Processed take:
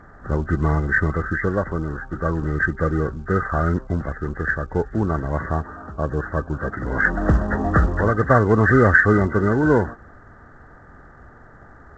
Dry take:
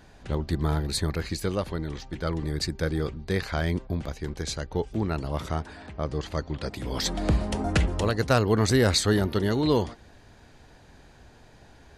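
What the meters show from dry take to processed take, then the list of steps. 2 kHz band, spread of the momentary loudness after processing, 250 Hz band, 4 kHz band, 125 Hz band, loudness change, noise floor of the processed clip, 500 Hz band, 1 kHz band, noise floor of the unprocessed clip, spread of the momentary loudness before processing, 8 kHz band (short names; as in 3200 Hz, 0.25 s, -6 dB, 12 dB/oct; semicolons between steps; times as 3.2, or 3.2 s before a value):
+14.5 dB, 12 LU, +6.0 dB, under -20 dB, +6.0 dB, +6.5 dB, -46 dBFS, +6.0 dB, +9.0 dB, -53 dBFS, 11 LU, under -15 dB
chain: nonlinear frequency compression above 1100 Hz 4:1; gain +6 dB; µ-law 128 kbps 16000 Hz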